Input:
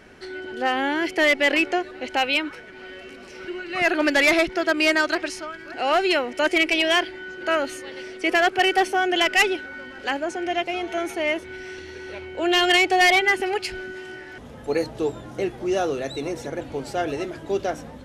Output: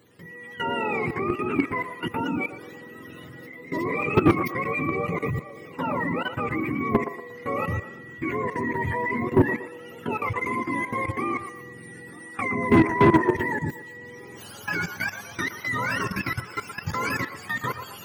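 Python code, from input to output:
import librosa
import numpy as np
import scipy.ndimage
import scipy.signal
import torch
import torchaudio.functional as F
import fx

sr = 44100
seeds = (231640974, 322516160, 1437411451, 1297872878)

p1 = fx.octave_mirror(x, sr, pivot_hz=850.0)
p2 = fx.high_shelf(p1, sr, hz=5200.0, db=8.0)
p3 = fx.level_steps(p2, sr, step_db=16)
p4 = 10.0 ** (-15.0 / 20.0) * np.tanh(p3 / 10.0 ** (-15.0 / 20.0))
p5 = p4 + fx.echo_wet_bandpass(p4, sr, ms=118, feedback_pct=37, hz=830.0, wet_db=-8.0, dry=0)
y = p5 * 10.0 ** (5.5 / 20.0)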